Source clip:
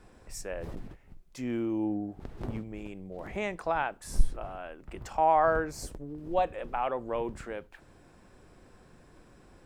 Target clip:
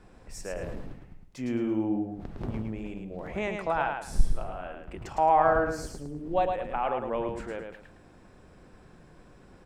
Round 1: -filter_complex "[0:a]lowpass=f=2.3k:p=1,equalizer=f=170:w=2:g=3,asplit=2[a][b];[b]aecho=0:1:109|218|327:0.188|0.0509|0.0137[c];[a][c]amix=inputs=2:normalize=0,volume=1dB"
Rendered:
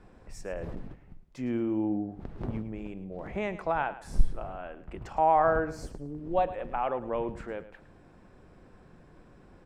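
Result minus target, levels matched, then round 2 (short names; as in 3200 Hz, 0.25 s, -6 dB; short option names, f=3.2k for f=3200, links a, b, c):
echo-to-direct -9.5 dB; 8000 Hz band -6.0 dB
-filter_complex "[0:a]lowpass=f=5.9k:p=1,equalizer=f=170:w=2:g=3,asplit=2[a][b];[b]aecho=0:1:109|218|327|436:0.562|0.152|0.041|0.0111[c];[a][c]amix=inputs=2:normalize=0,volume=1dB"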